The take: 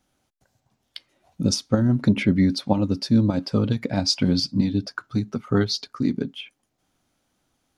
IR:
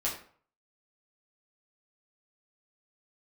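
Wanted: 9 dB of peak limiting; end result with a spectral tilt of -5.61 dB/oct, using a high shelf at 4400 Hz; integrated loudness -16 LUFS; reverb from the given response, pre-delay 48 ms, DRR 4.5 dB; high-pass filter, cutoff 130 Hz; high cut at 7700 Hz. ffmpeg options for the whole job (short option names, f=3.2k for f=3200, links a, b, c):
-filter_complex "[0:a]highpass=130,lowpass=7.7k,highshelf=f=4.4k:g=-9,alimiter=limit=-15.5dB:level=0:latency=1,asplit=2[a][b];[1:a]atrim=start_sample=2205,adelay=48[c];[b][c]afir=irnorm=-1:irlink=0,volume=-10dB[d];[a][d]amix=inputs=2:normalize=0,volume=10dB"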